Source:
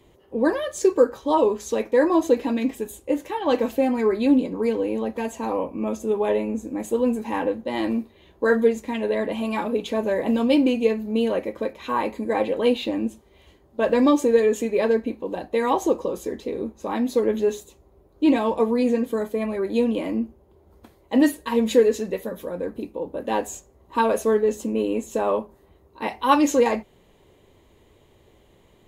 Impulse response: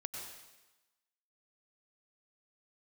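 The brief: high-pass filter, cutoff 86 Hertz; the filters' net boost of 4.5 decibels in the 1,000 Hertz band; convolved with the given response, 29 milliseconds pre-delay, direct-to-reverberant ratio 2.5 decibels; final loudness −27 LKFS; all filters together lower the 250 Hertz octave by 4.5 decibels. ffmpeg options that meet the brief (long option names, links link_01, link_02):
-filter_complex "[0:a]highpass=86,equalizer=frequency=250:width_type=o:gain=-5.5,equalizer=frequency=1000:width_type=o:gain=5.5,asplit=2[link_01][link_02];[1:a]atrim=start_sample=2205,adelay=29[link_03];[link_02][link_03]afir=irnorm=-1:irlink=0,volume=-1.5dB[link_04];[link_01][link_04]amix=inputs=2:normalize=0,volume=-5dB"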